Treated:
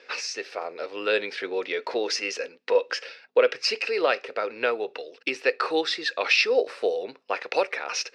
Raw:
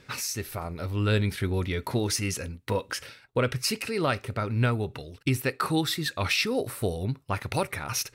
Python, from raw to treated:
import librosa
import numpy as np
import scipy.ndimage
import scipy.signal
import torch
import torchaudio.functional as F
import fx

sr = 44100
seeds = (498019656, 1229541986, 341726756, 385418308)

y = fx.add_hum(x, sr, base_hz=50, snr_db=30)
y = fx.cabinet(y, sr, low_hz=360.0, low_slope=24, high_hz=5700.0, hz=(490.0, 710.0, 1700.0, 2600.0, 5000.0), db=(10, 4, 5, 7, 6))